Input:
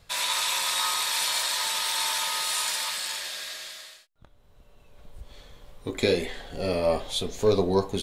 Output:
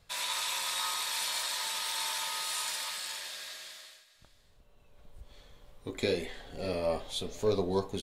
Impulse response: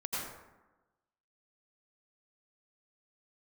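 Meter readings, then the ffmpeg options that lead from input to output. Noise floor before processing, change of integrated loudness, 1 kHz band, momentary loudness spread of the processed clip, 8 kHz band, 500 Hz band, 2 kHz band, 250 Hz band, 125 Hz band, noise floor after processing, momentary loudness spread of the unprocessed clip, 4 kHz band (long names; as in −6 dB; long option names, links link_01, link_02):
−58 dBFS, −7.0 dB, −7.0 dB, 12 LU, −7.0 dB, −7.0 dB, −7.0 dB, −7.0 dB, −7.0 dB, −63 dBFS, 11 LU, −7.0 dB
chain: -af "aecho=1:1:602:0.106,volume=-7dB"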